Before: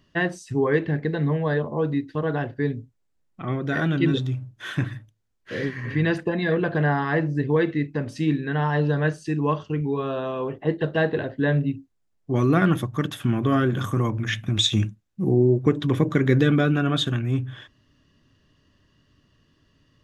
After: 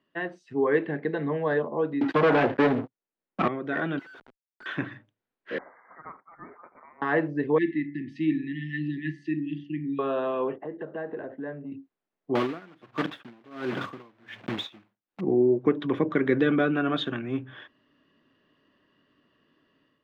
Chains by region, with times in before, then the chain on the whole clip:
2.01–3.48 s: waveshaping leveller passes 5 + three bands compressed up and down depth 40%
3.99–4.66 s: band-pass filter 1.5 kHz, Q 10 + comb 1.4 ms, depth 41% + Schmitt trigger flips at -54 dBFS
5.58–7.02 s: steep high-pass 2.7 kHz 48 dB/octave + frequency inversion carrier 3.9 kHz
7.58–9.99 s: brick-wall FIR band-stop 380–1700 Hz + treble shelf 3.9 kHz -7 dB + de-hum 72.02 Hz, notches 30
10.56–11.72 s: low-pass 1.6 kHz + compression 3:1, threshold -34 dBFS
12.35–15.22 s: block-companded coder 3-bit + logarithmic tremolo 1.4 Hz, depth 30 dB
whole clip: three-band isolator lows -24 dB, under 210 Hz, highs -20 dB, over 3.9 kHz; level rider gain up to 8.5 dB; treble shelf 5.2 kHz -9 dB; trim -7.5 dB

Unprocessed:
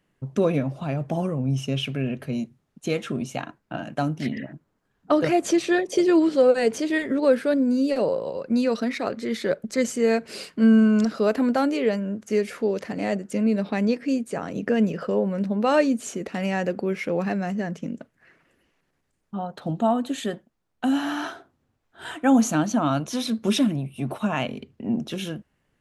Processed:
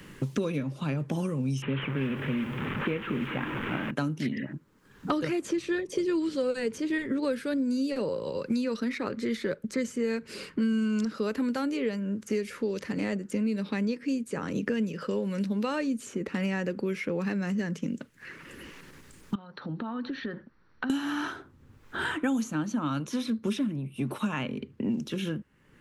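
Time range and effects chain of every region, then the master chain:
1.62–3.91 s: one-bit delta coder 16 kbps, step -28 dBFS + bit-crushed delay 201 ms, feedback 55%, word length 8-bit, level -15 dB
19.35–20.90 s: rippled Chebyshev low-pass 5.9 kHz, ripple 9 dB + compression 4:1, threshold -46 dBFS + treble shelf 3.5 kHz -11 dB
whole clip: peaking EQ 690 Hz -15 dB 0.39 oct; three bands compressed up and down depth 100%; trim -6 dB

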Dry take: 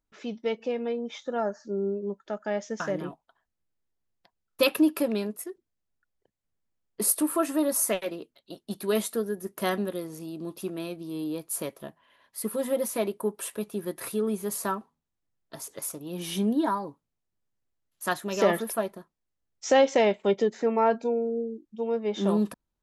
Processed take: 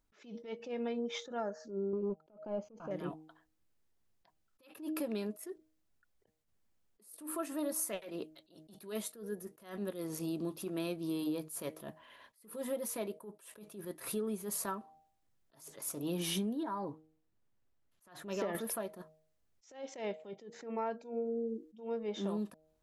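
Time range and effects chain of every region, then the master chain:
1.93–2.91 s: waveshaping leveller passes 2 + boxcar filter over 24 samples
16.63–18.55 s: treble shelf 3.7 kHz -9.5 dB + compression 1.5:1, threshold -38 dBFS
whole clip: de-hum 156.7 Hz, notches 5; compression 12:1, threshold -37 dBFS; attacks held to a fixed rise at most 140 dB/s; trim +4.5 dB

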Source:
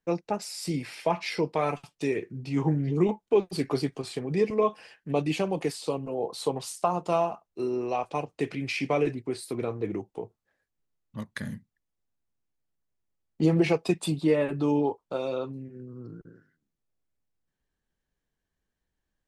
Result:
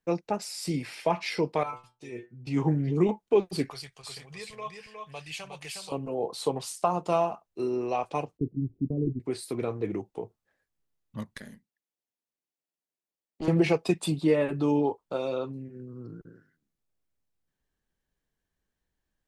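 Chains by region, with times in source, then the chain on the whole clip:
1.63–2.47 s: inharmonic resonator 120 Hz, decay 0.28 s, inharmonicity 0.002 + tape noise reduction on one side only decoder only
3.70–5.92 s: amplifier tone stack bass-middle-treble 10-0-10 + delay 361 ms -4.5 dB
8.37–9.20 s: gate -35 dBFS, range -11 dB + inverse Chebyshev low-pass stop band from 2 kHz, stop band 80 dB + bass shelf 170 Hz +9 dB
11.35–13.48 s: high-pass 290 Hz + peaking EQ 1.4 kHz -5 dB 0.64 oct + valve stage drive 28 dB, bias 0.75
whole clip: none

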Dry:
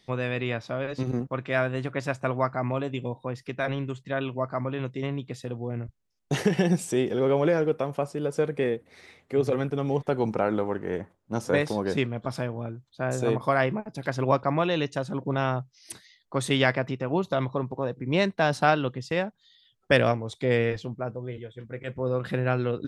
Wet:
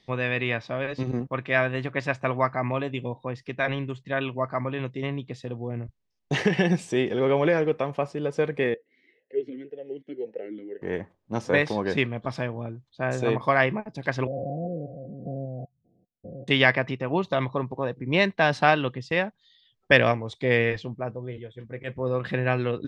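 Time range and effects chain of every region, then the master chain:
8.74–10.82 s: comb of notches 1.2 kHz + talking filter e-i 1.9 Hz
14.27–16.48 s: spectrogram pixelated in time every 200 ms + rippled Chebyshev low-pass 740 Hz, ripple 9 dB
whole clip: dynamic bell 2 kHz, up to +7 dB, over -41 dBFS, Q 0.75; low-pass 5.5 kHz 12 dB/octave; band-stop 1.4 kHz, Q 7.6

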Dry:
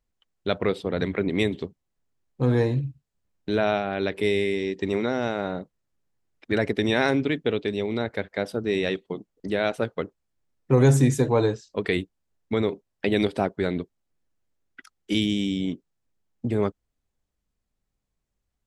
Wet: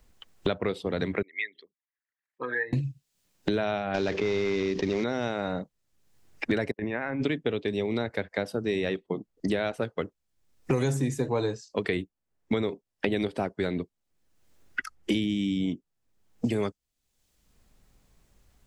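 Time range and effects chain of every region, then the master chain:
1.22–2.73 s: resonances exaggerated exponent 2 + resonant high-pass 1.8 kHz, resonance Q 4
3.94–5.04 s: CVSD coder 32 kbps + level flattener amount 70%
6.71–7.22 s: gate -28 dBFS, range -42 dB + compressor with a negative ratio -25 dBFS, ratio -0.5 + four-pole ladder low-pass 2.5 kHz, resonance 25%
whole clip: spectral noise reduction 8 dB; three bands compressed up and down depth 100%; trim -4 dB

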